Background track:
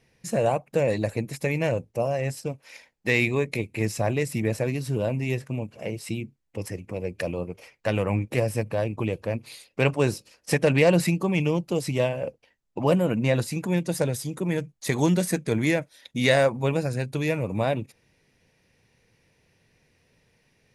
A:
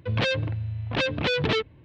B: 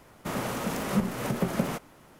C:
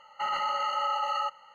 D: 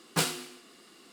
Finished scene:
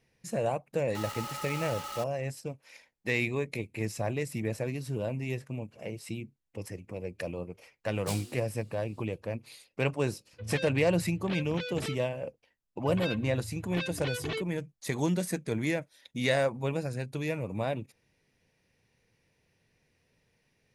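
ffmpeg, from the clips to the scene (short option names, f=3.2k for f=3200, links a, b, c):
-filter_complex "[1:a]asplit=2[a][b];[0:a]volume=-7dB[c];[3:a]acrusher=bits=4:mix=0:aa=0.000001[d];[4:a]equalizer=f=1.4k:t=o:w=2:g=-12[e];[a]bandreject=f=1k:w=12[f];[b]aecho=1:1:2.7:0.65[g];[d]atrim=end=1.54,asetpts=PTS-STARTPTS,volume=-11.5dB,afade=t=in:d=0.004:c=hsin,afade=t=out:st=1.536:d=0.004:c=hsin,adelay=750[h];[e]atrim=end=1.12,asetpts=PTS-STARTPTS,volume=-7.5dB,afade=t=in:d=0.004:c=hsin,afade=t=out:st=1.116:d=0.004:c=hsin,adelay=7900[i];[f]atrim=end=1.84,asetpts=PTS-STARTPTS,volume=-13.5dB,afade=t=in:d=0.004:c=hsin,afade=t=out:st=1.836:d=0.004:c=hsin,adelay=10330[j];[g]atrim=end=1.84,asetpts=PTS-STARTPTS,volume=-12.5dB,afade=t=in:d=0.004:c=hsin,afade=t=out:st=1.836:d=0.004:c=hsin,adelay=12800[k];[c][h][i][j][k]amix=inputs=5:normalize=0"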